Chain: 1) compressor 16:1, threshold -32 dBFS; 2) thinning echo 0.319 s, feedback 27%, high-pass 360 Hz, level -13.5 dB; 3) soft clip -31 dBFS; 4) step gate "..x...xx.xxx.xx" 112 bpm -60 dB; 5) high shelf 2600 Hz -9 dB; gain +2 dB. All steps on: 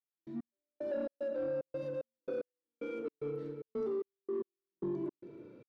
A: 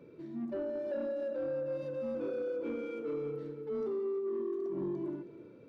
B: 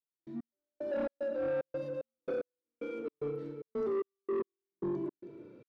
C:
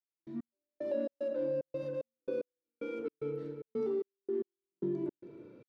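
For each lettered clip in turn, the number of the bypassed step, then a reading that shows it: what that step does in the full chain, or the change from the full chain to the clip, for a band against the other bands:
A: 4, crest factor change -3.0 dB; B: 1, mean gain reduction 2.5 dB; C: 3, distortion -19 dB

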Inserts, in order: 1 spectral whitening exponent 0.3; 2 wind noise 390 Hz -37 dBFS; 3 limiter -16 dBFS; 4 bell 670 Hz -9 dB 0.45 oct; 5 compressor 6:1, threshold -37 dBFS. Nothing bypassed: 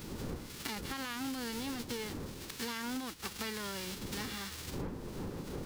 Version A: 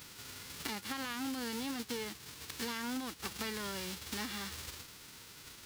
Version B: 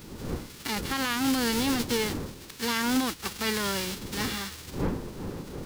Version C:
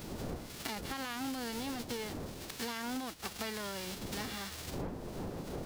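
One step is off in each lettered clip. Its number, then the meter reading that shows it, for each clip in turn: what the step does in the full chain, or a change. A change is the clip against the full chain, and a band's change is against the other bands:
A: 2, 125 Hz band -8.0 dB; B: 5, mean gain reduction 7.5 dB; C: 4, 1 kHz band +2.0 dB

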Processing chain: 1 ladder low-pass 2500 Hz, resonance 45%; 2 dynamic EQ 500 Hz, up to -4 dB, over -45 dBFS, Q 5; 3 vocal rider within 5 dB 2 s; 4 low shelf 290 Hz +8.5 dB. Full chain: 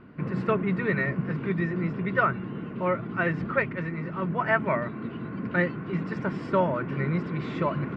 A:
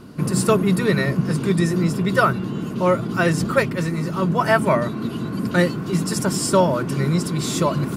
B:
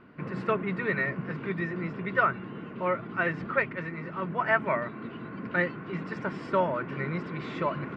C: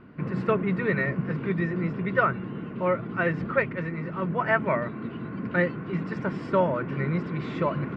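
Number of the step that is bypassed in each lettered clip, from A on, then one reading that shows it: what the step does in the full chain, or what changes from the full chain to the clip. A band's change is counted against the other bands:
1, 4 kHz band +10.0 dB; 4, 125 Hz band -6.0 dB; 2, 500 Hz band +1.5 dB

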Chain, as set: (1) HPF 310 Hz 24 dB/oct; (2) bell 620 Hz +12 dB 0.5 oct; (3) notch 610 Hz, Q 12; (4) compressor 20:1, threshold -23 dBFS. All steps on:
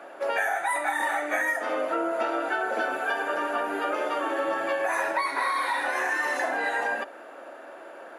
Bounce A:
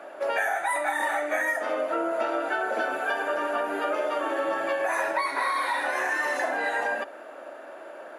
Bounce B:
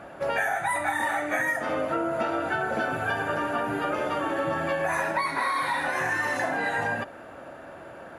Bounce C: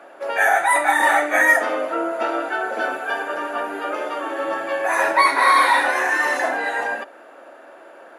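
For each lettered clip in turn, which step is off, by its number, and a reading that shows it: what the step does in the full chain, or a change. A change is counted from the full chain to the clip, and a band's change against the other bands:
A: 3, 500 Hz band +1.5 dB; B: 1, 250 Hz band +3.5 dB; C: 4, mean gain reduction 4.5 dB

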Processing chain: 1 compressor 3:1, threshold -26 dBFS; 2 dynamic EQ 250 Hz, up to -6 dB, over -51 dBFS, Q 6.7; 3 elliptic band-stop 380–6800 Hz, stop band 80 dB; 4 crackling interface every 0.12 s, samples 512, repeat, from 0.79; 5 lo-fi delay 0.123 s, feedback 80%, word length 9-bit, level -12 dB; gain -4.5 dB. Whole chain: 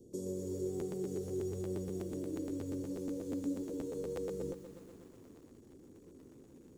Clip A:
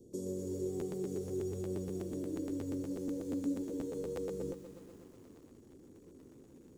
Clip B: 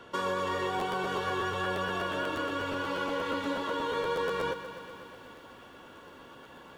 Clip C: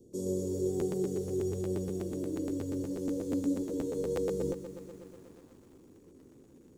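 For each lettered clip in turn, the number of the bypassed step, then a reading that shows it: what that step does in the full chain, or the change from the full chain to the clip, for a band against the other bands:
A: 2, momentary loudness spread change +1 LU; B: 3, 2 kHz band +25.5 dB; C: 1, momentary loudness spread change -6 LU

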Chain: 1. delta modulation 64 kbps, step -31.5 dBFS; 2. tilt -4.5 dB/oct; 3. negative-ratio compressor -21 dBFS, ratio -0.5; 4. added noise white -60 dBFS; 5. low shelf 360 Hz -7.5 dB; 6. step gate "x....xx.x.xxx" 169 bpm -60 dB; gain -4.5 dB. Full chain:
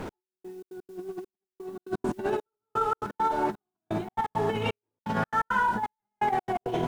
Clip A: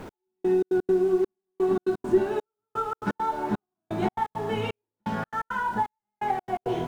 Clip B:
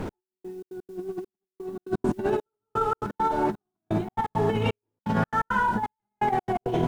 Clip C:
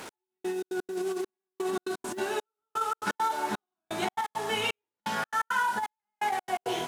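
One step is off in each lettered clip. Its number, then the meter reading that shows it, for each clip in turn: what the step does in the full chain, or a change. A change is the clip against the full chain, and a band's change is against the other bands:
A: 3, momentary loudness spread change -8 LU; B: 5, 125 Hz band +5.5 dB; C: 2, 4 kHz band +10.0 dB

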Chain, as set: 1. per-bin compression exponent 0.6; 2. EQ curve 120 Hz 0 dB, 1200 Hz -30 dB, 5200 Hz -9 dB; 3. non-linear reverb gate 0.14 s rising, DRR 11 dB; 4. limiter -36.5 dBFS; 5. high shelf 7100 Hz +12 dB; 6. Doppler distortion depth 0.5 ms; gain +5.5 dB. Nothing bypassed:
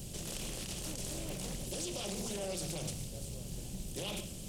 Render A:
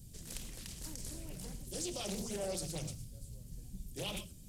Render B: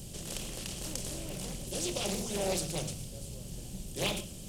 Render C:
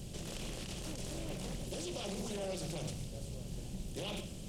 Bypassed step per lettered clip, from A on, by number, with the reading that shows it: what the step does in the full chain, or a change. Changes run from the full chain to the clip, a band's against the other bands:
1, 500 Hz band +2.0 dB; 4, mean gain reduction 2.0 dB; 5, 8 kHz band -6.5 dB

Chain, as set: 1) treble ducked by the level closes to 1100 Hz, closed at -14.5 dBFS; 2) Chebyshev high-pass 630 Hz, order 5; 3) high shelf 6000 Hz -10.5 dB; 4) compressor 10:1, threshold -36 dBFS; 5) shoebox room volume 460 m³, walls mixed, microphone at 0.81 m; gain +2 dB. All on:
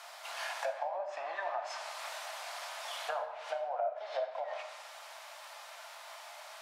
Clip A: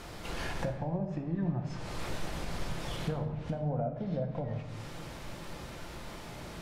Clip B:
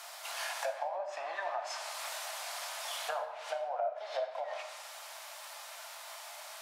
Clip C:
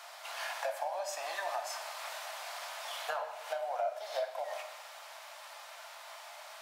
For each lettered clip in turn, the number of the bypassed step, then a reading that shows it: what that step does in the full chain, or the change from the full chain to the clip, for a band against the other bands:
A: 2, 1 kHz band -3.5 dB; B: 3, 8 kHz band +6.0 dB; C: 1, 8 kHz band +3.0 dB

